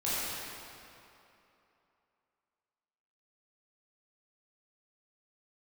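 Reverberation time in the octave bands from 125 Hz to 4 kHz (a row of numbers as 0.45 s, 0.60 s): 2.5 s, 2.7 s, 2.9 s, 3.0 s, 2.5 s, 2.1 s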